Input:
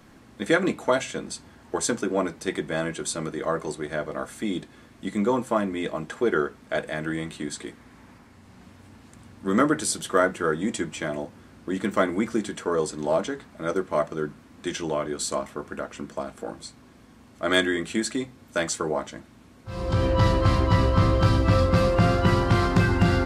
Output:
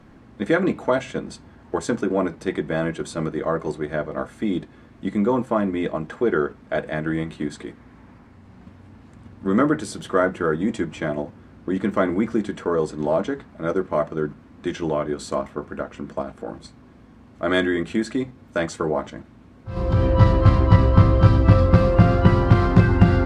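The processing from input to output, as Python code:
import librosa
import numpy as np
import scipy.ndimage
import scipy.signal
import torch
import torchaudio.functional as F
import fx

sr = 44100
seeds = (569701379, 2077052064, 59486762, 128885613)

p1 = fx.lowpass(x, sr, hz=1800.0, slope=6)
p2 = fx.low_shelf(p1, sr, hz=190.0, db=4.0)
p3 = fx.level_steps(p2, sr, step_db=15)
y = p2 + (p3 * 10.0 ** (-1.5 / 20.0))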